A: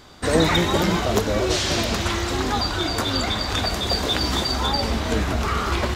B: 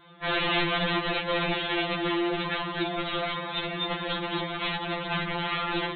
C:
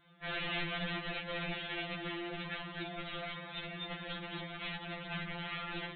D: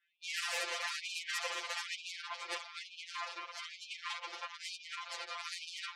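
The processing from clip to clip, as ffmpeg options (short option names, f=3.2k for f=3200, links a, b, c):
-af "highpass=56,aresample=8000,aeval=exprs='(mod(6.68*val(0)+1,2)-1)/6.68':c=same,aresample=44100,afftfilt=real='re*2.83*eq(mod(b,8),0)':imag='im*2.83*eq(mod(b,8),0)':win_size=2048:overlap=0.75,volume=-2.5dB"
-af "equalizer=f=400:t=o:w=0.67:g=-10,equalizer=f=1k:t=o:w=0.67:g=-9,equalizer=f=4k:t=o:w=0.67:g=-5,volume=-8dB"
-filter_complex "[0:a]asplit=3[a][b][c];[a]bandpass=f=530:t=q:w=8,volume=0dB[d];[b]bandpass=f=1.84k:t=q:w=8,volume=-6dB[e];[c]bandpass=f=2.48k:t=q:w=8,volume=-9dB[f];[d][e][f]amix=inputs=3:normalize=0,aeval=exprs='0.0158*(cos(1*acos(clip(val(0)/0.0158,-1,1)))-cos(1*PI/2))+0.00316*(cos(7*acos(clip(val(0)/0.0158,-1,1)))-cos(7*PI/2))+0.00398*(cos(8*acos(clip(val(0)/0.0158,-1,1)))-cos(8*PI/2))':c=same,afftfilt=real='re*gte(b*sr/1024,330*pow(2400/330,0.5+0.5*sin(2*PI*1.1*pts/sr)))':imag='im*gte(b*sr/1024,330*pow(2400/330,0.5+0.5*sin(2*PI*1.1*pts/sr)))':win_size=1024:overlap=0.75,volume=11dB"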